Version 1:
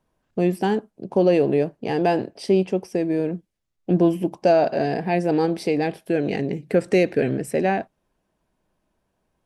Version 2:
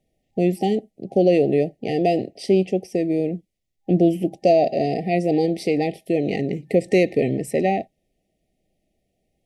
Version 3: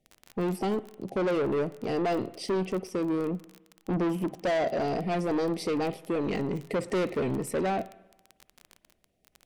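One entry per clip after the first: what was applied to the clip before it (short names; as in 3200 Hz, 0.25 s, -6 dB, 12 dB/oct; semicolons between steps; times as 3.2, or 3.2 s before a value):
FFT band-reject 800–1800 Hz; gain +1 dB
crackle 26/s -29 dBFS; soft clip -21.5 dBFS, distortion -7 dB; reverb RT60 1.0 s, pre-delay 49 ms, DRR 17.5 dB; gain -2.5 dB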